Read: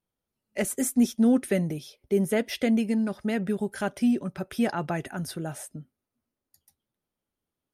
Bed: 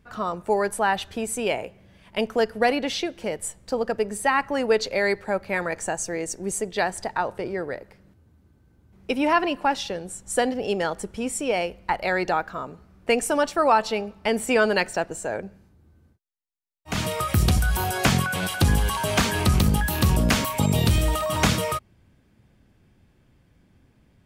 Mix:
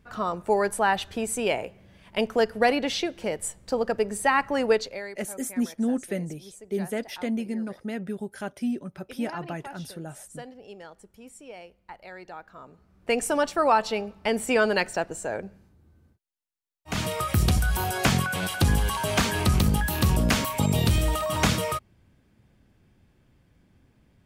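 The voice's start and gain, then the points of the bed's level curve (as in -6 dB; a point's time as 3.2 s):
4.60 s, -5.0 dB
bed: 4.71 s -0.5 dB
5.16 s -19 dB
12.28 s -19 dB
13.21 s -2 dB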